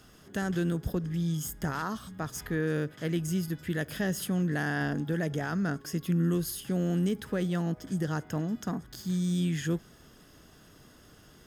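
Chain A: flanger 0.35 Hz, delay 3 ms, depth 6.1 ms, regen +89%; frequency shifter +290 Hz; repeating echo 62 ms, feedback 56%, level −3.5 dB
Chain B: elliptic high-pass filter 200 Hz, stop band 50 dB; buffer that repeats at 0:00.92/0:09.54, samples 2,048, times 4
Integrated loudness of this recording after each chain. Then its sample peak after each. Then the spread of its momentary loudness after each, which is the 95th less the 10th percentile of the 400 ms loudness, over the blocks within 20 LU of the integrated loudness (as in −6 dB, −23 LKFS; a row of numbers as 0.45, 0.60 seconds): −33.0, −35.0 LKFS; −18.5, −19.0 dBFS; 7, 6 LU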